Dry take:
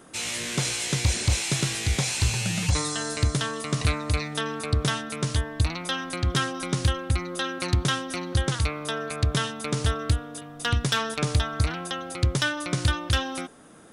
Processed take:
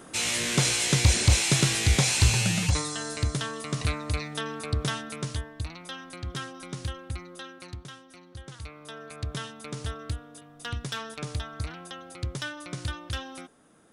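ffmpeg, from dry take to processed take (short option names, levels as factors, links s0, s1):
-af "volume=4.47,afade=t=out:st=2.39:d=0.47:silence=0.446684,afade=t=out:st=5.09:d=0.46:silence=0.473151,afade=t=out:st=7.16:d=0.72:silence=0.354813,afade=t=in:st=8.4:d=0.9:silence=0.316228"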